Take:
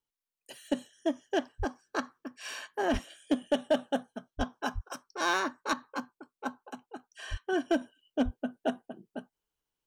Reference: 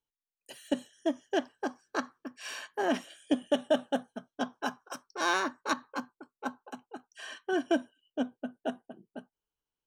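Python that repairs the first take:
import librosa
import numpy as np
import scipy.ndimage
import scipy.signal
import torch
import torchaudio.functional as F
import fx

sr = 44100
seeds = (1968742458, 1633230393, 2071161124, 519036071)

y = fx.fix_declip(x, sr, threshold_db=-18.5)
y = fx.fix_deplosive(y, sr, at_s=(1.58, 2.92, 4.37, 4.74, 7.3, 8.24))
y = fx.fix_level(y, sr, at_s=7.81, step_db=-3.5)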